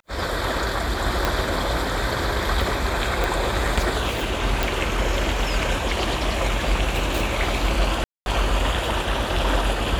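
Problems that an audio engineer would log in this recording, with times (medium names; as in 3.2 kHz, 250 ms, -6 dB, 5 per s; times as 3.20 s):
1.25 s: pop
3.24 s: pop
4.63 s: pop
8.04–8.26 s: dropout 221 ms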